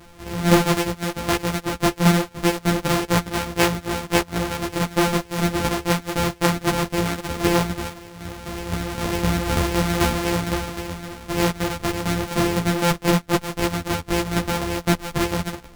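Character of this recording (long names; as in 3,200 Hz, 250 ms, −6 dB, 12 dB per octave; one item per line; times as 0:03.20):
a buzz of ramps at a fixed pitch in blocks of 256 samples
tremolo saw down 3.9 Hz, depth 55%
a shimmering, thickened sound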